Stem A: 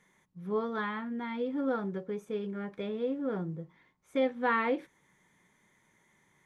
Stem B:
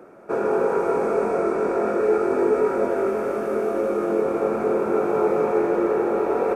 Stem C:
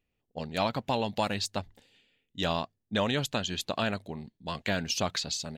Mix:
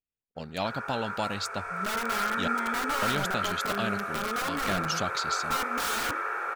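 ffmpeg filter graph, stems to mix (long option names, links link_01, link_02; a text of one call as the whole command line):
ffmpeg -i stem1.wav -i stem2.wav -i stem3.wav -filter_complex "[0:a]aeval=exprs='(mod(29.9*val(0)+1,2)-1)/29.9':channel_layout=same,adelay=1350,volume=1dB[link_01];[1:a]highpass=frequency=1500:width_type=q:width=2.8,adelay=350,volume=-2.5dB,afade=type=in:start_time=1.5:duration=0.67:silence=0.421697[link_02];[2:a]highshelf=frequency=12000:gain=5,volume=-2.5dB,asplit=3[link_03][link_04][link_05];[link_03]atrim=end=2.48,asetpts=PTS-STARTPTS,afade=type=out:start_time=2.476:duration=0.004:curve=hsin[link_06];[link_04]atrim=start=2.48:end=3.02,asetpts=PTS-STARTPTS,volume=0[link_07];[link_05]atrim=start=3.02,asetpts=PTS-STARTPTS,afade=type=in:duration=0.004:curve=hsin[link_08];[link_06][link_07][link_08]concat=n=3:v=0:a=1[link_09];[link_01][link_02][link_09]amix=inputs=3:normalize=0,agate=range=-17dB:threshold=-55dB:ratio=16:detection=peak" out.wav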